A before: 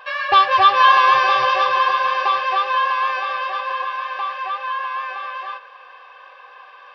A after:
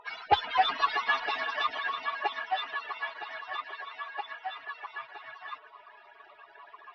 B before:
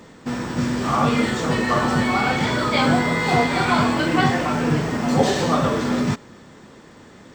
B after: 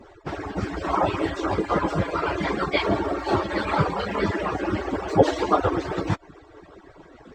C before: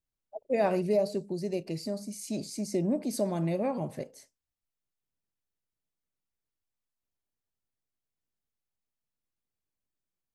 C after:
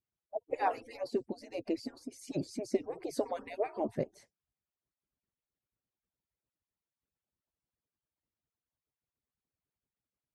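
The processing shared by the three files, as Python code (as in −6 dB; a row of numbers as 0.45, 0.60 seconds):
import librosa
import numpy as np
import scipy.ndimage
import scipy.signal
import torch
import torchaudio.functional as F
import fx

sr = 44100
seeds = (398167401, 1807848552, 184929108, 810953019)

y = fx.hpss_only(x, sr, part='percussive')
y = fx.lowpass(y, sr, hz=1500.0, slope=6)
y = y * 10.0 ** (4.5 / 20.0)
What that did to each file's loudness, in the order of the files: −14.5, −4.5, −6.0 LU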